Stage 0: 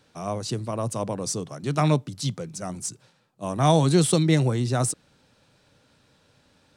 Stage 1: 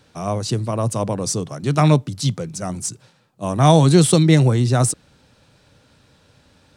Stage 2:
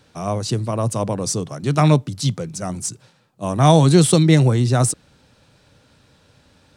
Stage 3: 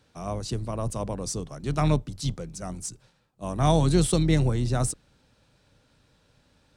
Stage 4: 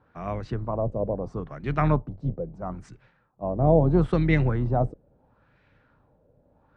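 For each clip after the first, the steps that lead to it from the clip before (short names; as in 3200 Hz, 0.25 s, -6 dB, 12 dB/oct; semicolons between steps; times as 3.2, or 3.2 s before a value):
bell 63 Hz +6 dB 1.8 oct; gain +5.5 dB
nothing audible
octaver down 2 oct, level -6 dB; gain -9 dB
LFO low-pass sine 0.75 Hz 540–2100 Hz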